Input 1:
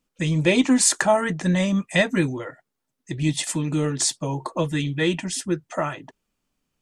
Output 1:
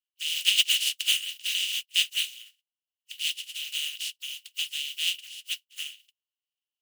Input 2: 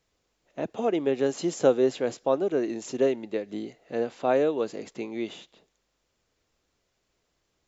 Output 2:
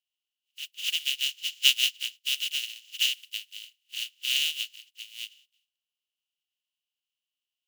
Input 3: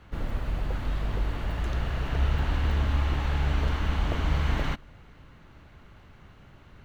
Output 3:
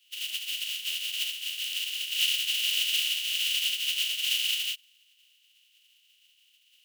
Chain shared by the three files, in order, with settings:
compressing power law on the bin magnitudes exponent 0.14
four-pole ladder high-pass 2,800 Hz, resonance 85%
expander for the loud parts 1.5 to 1, over −49 dBFS
loudness normalisation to −27 LKFS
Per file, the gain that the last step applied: +2.5, +5.5, +5.0 decibels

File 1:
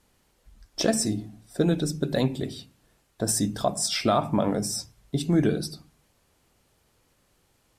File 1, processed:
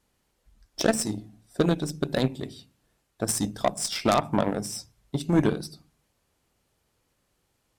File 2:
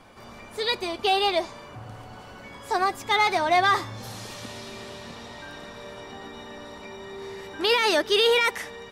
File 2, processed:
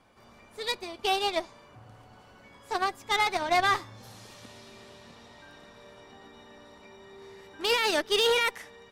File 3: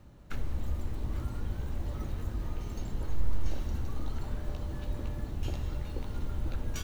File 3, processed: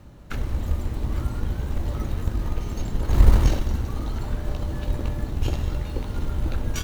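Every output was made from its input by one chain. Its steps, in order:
harmonic generator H 2 −23 dB, 3 −8 dB, 5 −19 dB, 7 −30 dB, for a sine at −9.5 dBFS
sine wavefolder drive 7 dB, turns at −8.5 dBFS
loudness normalisation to −27 LKFS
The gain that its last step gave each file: −0.5, −5.0, +14.0 decibels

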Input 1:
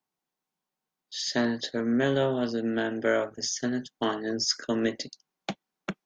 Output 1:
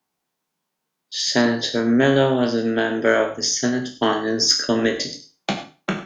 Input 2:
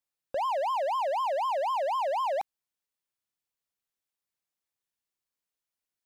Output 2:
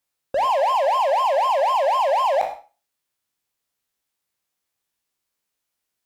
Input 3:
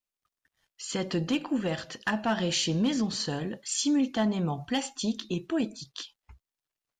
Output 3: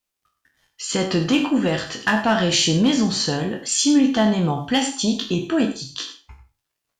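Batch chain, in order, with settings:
peak hold with a decay on every bin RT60 0.32 s
harmonic generator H 2 −33 dB, 3 −28 dB, 4 −38 dB, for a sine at −11 dBFS
reverb whose tail is shaped and stops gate 120 ms rising, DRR 10.5 dB
loudness normalisation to −20 LKFS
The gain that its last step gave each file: +8.5, +9.0, +9.0 decibels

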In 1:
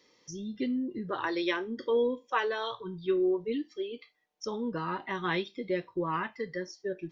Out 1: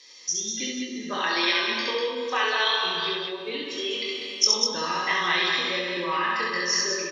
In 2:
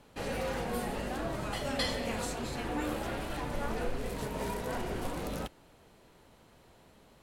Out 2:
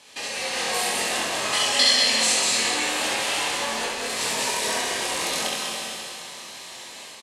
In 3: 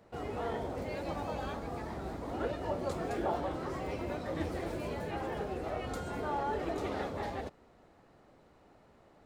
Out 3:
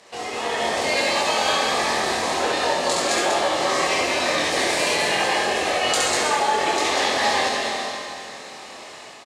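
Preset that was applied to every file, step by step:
four-comb reverb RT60 2.3 s, combs from 28 ms, DRR 4.5 dB
downward compressor 4 to 1, threshold −40 dBFS
meter weighting curve ITU-R 468
automatic gain control gain up to 8 dB
notch filter 1,400 Hz, Q 6
double-tracking delay 23 ms −4.5 dB
on a send: loudspeakers that aren't time-aligned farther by 23 metres −2 dB, 67 metres −4 dB
on the sum: normalise the peak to −6 dBFS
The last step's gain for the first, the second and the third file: +5.0, +6.0, +12.5 decibels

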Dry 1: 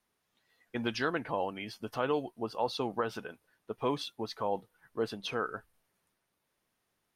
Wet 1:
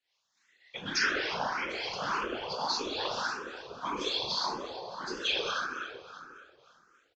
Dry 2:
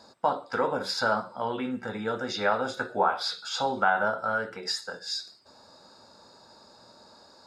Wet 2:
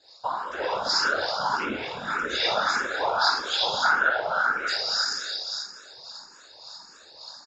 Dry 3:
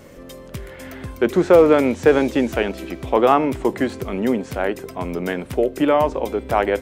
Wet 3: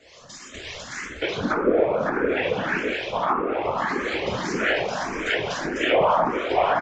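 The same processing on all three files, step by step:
tilt shelving filter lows −9.5 dB, about 1,300 Hz
on a send: repeating echo 445 ms, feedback 29%, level −18 dB
on the sum: dense smooth reverb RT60 2.4 s, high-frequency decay 0.6×, DRR −7 dB
treble cut that deepens with the level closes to 830 Hz, closed at −8 dBFS
low-shelf EQ 190 Hz −5.5 dB
automatic gain control gain up to 4 dB
random phases in short frames
downsampling to 16,000 Hz
two-band tremolo in antiphase 3.5 Hz, depth 50%, crossover 700 Hz
frequency shifter mixed with the dry sound +1.7 Hz
level −1.5 dB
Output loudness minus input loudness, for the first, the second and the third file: +2.5, +4.0, −5.0 LU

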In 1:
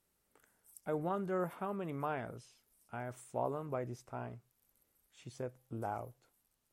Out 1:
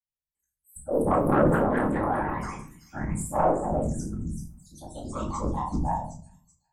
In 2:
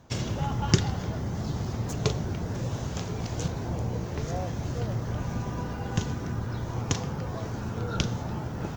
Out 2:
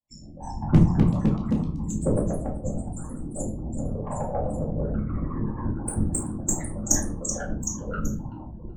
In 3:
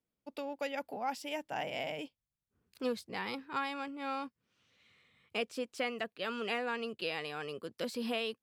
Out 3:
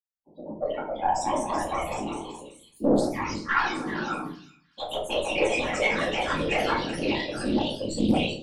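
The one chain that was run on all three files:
spectral dynamics exaggerated over time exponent 2
parametric band 7,500 Hz +11 dB 0.55 octaves
tuned comb filter 59 Hz, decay 0.2 s, harmonics all, mix 100%
automatic gain control gain up to 10 dB
in parallel at −6 dB: comparator with hysteresis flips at −30 dBFS
on the sum: gate on every frequency bin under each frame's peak −10 dB strong
random phases in short frames
harmonic generator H 6 −25 dB, 7 −27 dB, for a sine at −8 dBFS
delay with pitch and tempo change per echo 332 ms, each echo +2 semitones, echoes 3
on a send: echo through a band-pass that steps 381 ms, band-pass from 4,500 Hz, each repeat 0.7 octaves, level −5 dB
on the sum: rectangular room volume 370 cubic metres, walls furnished, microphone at 2.3 metres
highs frequency-modulated by the lows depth 0.27 ms
loudness normalisation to −27 LKFS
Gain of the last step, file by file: +10.0, +2.0, +8.5 decibels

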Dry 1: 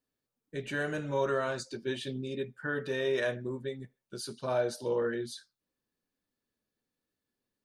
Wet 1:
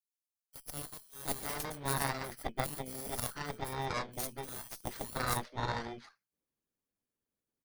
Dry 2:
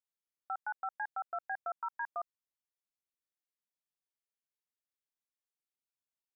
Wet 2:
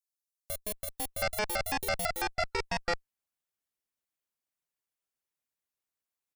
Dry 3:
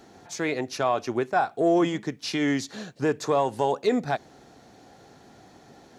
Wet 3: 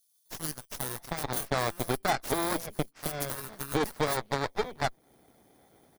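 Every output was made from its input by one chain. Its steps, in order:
samples in bit-reversed order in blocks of 16 samples
harmonic and percussive parts rebalanced percussive +9 dB
multiband delay without the direct sound highs, lows 720 ms, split 4,300 Hz
harmonic generator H 3 −23 dB, 5 −33 dB, 6 −15 dB, 7 −16 dB, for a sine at −6 dBFS
downward compressor 2 to 1, threshold −30 dBFS
normalise the peak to −12 dBFS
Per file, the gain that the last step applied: +3.5, +11.5, −1.0 decibels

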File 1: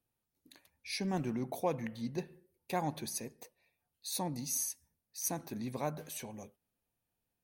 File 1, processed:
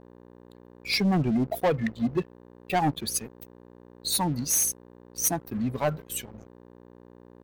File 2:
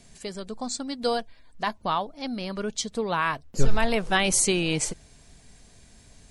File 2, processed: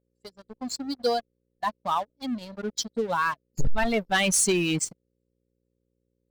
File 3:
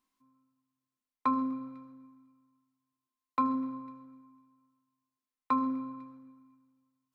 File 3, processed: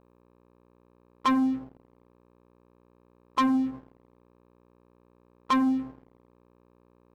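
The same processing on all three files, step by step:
spectral dynamics exaggerated over time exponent 2
hum with harmonics 60 Hz, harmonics 9, −64 dBFS −2 dB per octave
leveller curve on the samples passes 3
loudness normalisation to −27 LKFS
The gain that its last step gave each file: +6.0, −6.5, +1.0 decibels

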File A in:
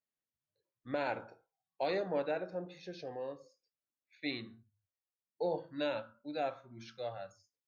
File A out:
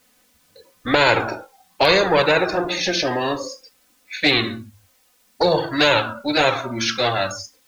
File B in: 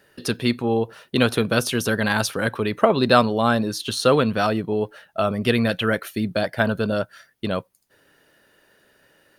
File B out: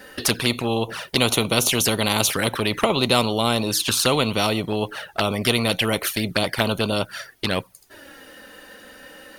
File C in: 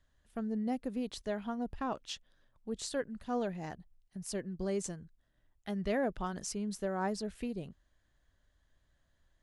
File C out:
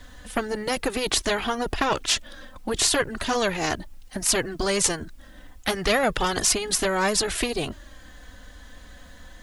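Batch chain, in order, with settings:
flanger swept by the level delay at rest 4 ms, full sweep at −19 dBFS
every bin compressed towards the loudest bin 2 to 1
normalise the peak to −2 dBFS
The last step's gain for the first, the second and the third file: +24.5, +2.0, +22.0 decibels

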